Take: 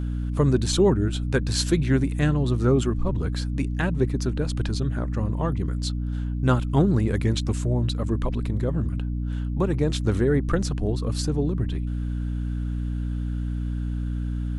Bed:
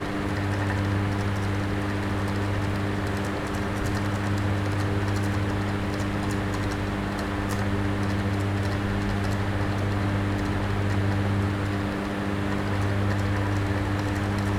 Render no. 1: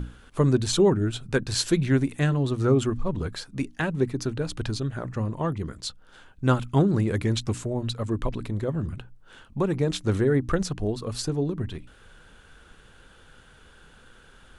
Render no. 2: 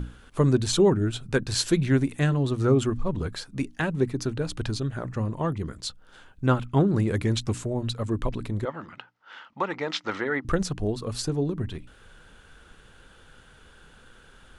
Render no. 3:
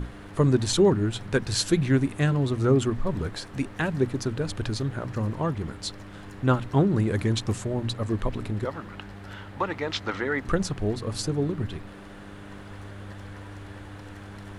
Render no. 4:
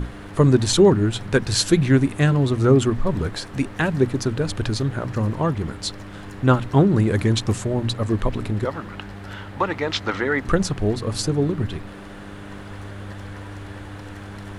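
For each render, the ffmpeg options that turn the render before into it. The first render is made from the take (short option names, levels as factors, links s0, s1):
-af "bandreject=f=60:t=h:w=6,bandreject=f=120:t=h:w=6,bandreject=f=180:t=h:w=6,bandreject=f=240:t=h:w=6,bandreject=f=300:t=h:w=6"
-filter_complex "[0:a]asettb=1/sr,asplit=3[s0][s1][s2];[s0]atrim=end=6.464[s3];[s1]atrim=start=6.46:end=6.96,asetpts=PTS-STARTPTS,afade=t=in:d=0.004:c=qsin,afade=t=out:st=0.496:d=0.004:c=qsin,bass=f=250:g=-1,treble=f=4000:g=-8[s4];[s2]atrim=start=6.956[s5];[s3][s4]acrossfade=d=0.004:c1=hsin:c2=qsin[s6];[s6][s5]acrossfade=d=0.004:c1=qsin:c2=hsin,asettb=1/sr,asplit=3[s7][s8][s9];[s7]atrim=end=8.654[s10];[s8]atrim=start=8.65:end=10.45,asetpts=PTS-STARTPTS,afade=t=in:d=0.004:c=qsin,afade=t=out:st=1.796:d=0.004:c=qsin,highpass=380,equalizer=f=400:t=q:w=4:g=-7,equalizer=f=890:t=q:w=4:g=8,equalizer=f=1300:t=q:w=4:g=8,equalizer=f=2000:t=q:w=4:g=10,equalizer=f=3000:t=q:w=4:g=4,equalizer=f=5100:t=q:w=4:g=4,lowpass=f=5700:w=0.5412,lowpass=f=5700:w=1.3066[s11];[s9]atrim=start=10.446[s12];[s10][s11]acrossfade=d=0.004:c1=hsin:c2=qsin[s13];[s13][s12]acrossfade=d=0.004:c1=qsin:c2=hsin"
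-filter_complex "[1:a]volume=0.158[s0];[0:a][s0]amix=inputs=2:normalize=0"
-af "volume=1.88"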